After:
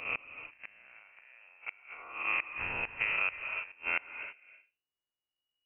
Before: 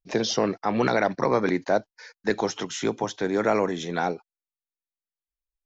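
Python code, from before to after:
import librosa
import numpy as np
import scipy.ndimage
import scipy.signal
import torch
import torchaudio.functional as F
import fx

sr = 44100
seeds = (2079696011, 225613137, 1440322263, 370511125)

y = fx.spec_blur(x, sr, span_ms=219.0)
y = fx.high_shelf(y, sr, hz=2000.0, db=7.5)
y = fx.hum_notches(y, sr, base_hz=60, count=5)
y = fx.gate_flip(y, sr, shuts_db=-19.0, range_db=-33)
y = fx.rev_gated(y, sr, seeds[0], gate_ms=360, shape='rising', drr_db=10.0)
y = fx.freq_invert(y, sr, carrier_hz=2900)
y = fx.band_squash(y, sr, depth_pct=100, at=(3.0, 3.72))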